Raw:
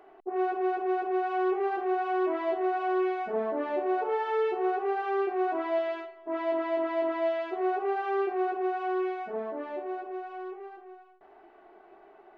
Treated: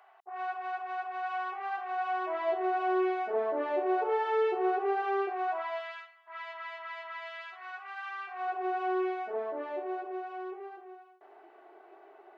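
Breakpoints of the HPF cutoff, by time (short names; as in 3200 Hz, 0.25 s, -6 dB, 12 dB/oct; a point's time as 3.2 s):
HPF 24 dB/oct
1.84 s 780 Hz
2.91 s 320 Hz
5.04 s 320 Hz
6 s 1200 Hz
8.21 s 1200 Hz
8.78 s 320 Hz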